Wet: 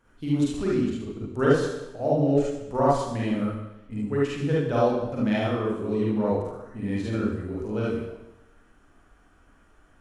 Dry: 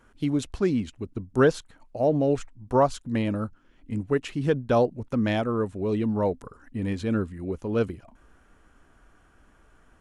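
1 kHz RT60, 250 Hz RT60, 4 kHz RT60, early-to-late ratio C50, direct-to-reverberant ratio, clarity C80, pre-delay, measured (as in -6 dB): 0.95 s, 0.95 s, 0.90 s, -2.0 dB, -7.0 dB, 4.0 dB, 40 ms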